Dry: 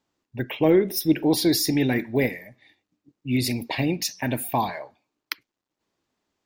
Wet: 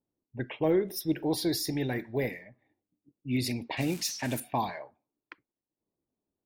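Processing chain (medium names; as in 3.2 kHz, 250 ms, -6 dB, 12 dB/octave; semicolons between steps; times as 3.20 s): 3.77–4.40 s: zero-crossing glitches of -22 dBFS; treble shelf 11 kHz -4 dB; level-controlled noise filter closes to 530 Hz, open at -21 dBFS; 0.56–2.27 s: fifteen-band graphic EQ 250 Hz -6 dB, 2.5 kHz -6 dB, 6.3 kHz -3 dB; trim -6 dB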